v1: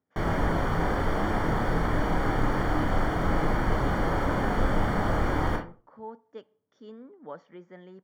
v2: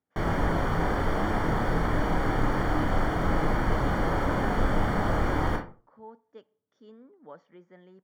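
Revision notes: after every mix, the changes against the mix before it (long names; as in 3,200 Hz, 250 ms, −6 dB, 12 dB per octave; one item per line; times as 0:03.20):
speech −5.5 dB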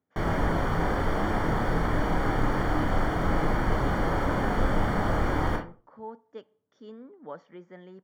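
speech +6.0 dB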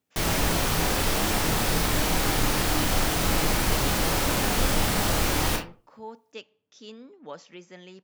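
master: remove Savitzky-Golay smoothing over 41 samples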